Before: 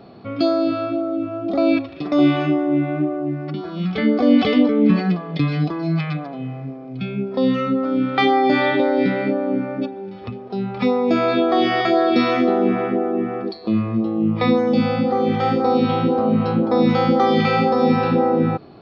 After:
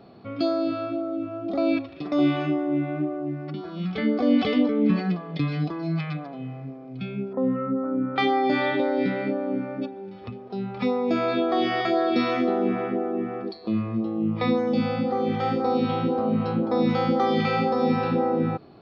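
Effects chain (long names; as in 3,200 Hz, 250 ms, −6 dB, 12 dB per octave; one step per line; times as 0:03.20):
0:07.33–0:08.16: low-pass filter 1,500 Hz 24 dB per octave
level −6 dB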